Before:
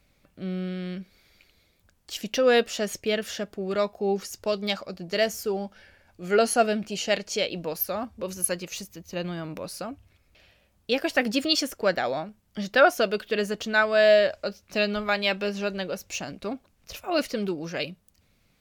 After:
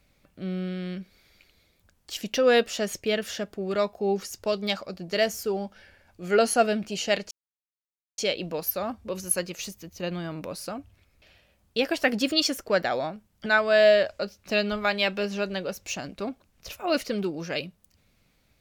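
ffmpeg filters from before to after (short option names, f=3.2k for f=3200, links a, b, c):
-filter_complex "[0:a]asplit=3[a][b][c];[a]atrim=end=7.31,asetpts=PTS-STARTPTS,afade=t=out:st=7.306:d=0.004:c=hsin,apad=pad_dur=0.87[d];[b]atrim=start=7.31:end=12.592,asetpts=PTS-STARTPTS,afade=t=in:d=0.004:c=hsin[e];[c]atrim=start=13.698[f];[d][e]concat=n=2:v=0:a=1[g];[g][f]acrossfade=d=0.004:c1=hsin:c2=hsin"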